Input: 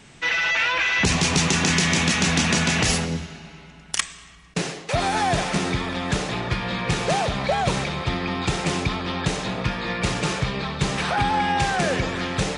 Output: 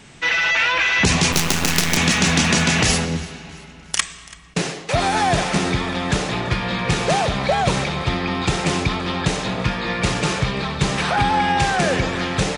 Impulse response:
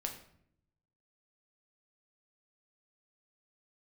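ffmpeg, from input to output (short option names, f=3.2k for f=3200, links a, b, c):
-filter_complex "[0:a]asettb=1/sr,asplit=3[a][b][c];[a]atrim=end=1.324[d];[b]atrim=start=1.32:end=1.97,asetpts=PTS-STARTPTS,afade=t=in:d=0.004:c=qsin,afade=t=out:st=0.646:d=0.004:c=qsin,acrusher=bits=3:dc=4:mix=0:aa=0.000001[e];[c]atrim=start=1.966[f];[d][e]acrossfade=d=0.004:c1=hsin:c2=qsin[g];[g][f]acrossfade=d=0.004:c1=qsin:c2=hsin,asplit=2[h][i];[i]aecho=0:1:334|668|1002:0.0841|0.0387|0.0178[j];[h][j]amix=inputs=2:normalize=0,volume=3.5dB"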